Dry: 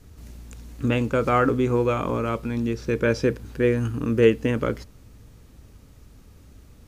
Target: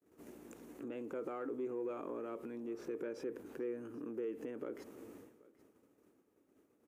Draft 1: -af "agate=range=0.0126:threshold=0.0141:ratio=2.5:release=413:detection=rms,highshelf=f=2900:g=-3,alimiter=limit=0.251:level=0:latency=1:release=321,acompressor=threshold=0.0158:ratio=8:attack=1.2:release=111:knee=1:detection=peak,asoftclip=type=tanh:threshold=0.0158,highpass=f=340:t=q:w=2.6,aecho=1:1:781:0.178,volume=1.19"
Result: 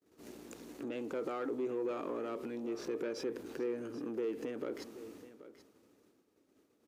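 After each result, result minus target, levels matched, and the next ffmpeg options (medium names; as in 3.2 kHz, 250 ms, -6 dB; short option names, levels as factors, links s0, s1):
4 kHz band +8.5 dB; compression: peak gain reduction -5 dB; echo-to-direct +7 dB
-af "agate=range=0.0126:threshold=0.0141:ratio=2.5:release=413:detection=rms,highshelf=f=2900:g=-3,alimiter=limit=0.251:level=0:latency=1:release=321,acompressor=threshold=0.0158:ratio=8:attack=1.2:release=111:knee=1:detection=peak,asoftclip=type=tanh:threshold=0.0158,highpass=f=340:t=q:w=2.6,equalizer=f=4400:t=o:w=1.2:g=-10.5,aecho=1:1:781:0.178,volume=1.19"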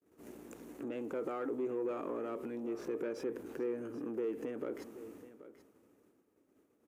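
compression: peak gain reduction -5 dB; echo-to-direct +7 dB
-af "agate=range=0.0126:threshold=0.0141:ratio=2.5:release=413:detection=rms,highshelf=f=2900:g=-3,alimiter=limit=0.251:level=0:latency=1:release=321,acompressor=threshold=0.00794:ratio=8:attack=1.2:release=111:knee=1:detection=peak,asoftclip=type=tanh:threshold=0.0158,highpass=f=340:t=q:w=2.6,equalizer=f=4400:t=o:w=1.2:g=-10.5,aecho=1:1:781:0.178,volume=1.19"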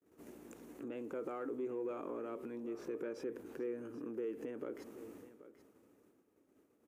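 echo-to-direct +7 dB
-af "agate=range=0.0126:threshold=0.0141:ratio=2.5:release=413:detection=rms,highshelf=f=2900:g=-3,alimiter=limit=0.251:level=0:latency=1:release=321,acompressor=threshold=0.00794:ratio=8:attack=1.2:release=111:knee=1:detection=peak,asoftclip=type=tanh:threshold=0.0158,highpass=f=340:t=q:w=2.6,equalizer=f=4400:t=o:w=1.2:g=-10.5,aecho=1:1:781:0.0794,volume=1.19"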